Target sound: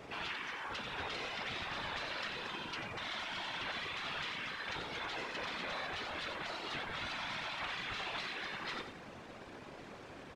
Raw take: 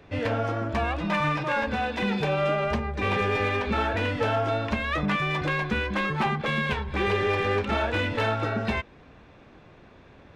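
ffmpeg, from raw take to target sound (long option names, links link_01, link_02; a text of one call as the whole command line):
ffmpeg -i in.wav -af "highpass=frequency=270:poles=1,afftfilt=real='re*lt(hypot(re,im),0.0398)':imag='im*lt(hypot(re,im),0.0398)':win_size=1024:overlap=0.75,aecho=1:1:90|180|270:0.398|0.111|0.0312,anlmdn=0.000158,acrusher=bits=8:mix=0:aa=0.000001,adynamicsmooth=sensitivity=1:basefreq=4900,afftfilt=real='hypot(re,im)*cos(2*PI*random(0))':imag='hypot(re,im)*sin(2*PI*random(1))':win_size=512:overlap=0.75,volume=8.5dB" out.wav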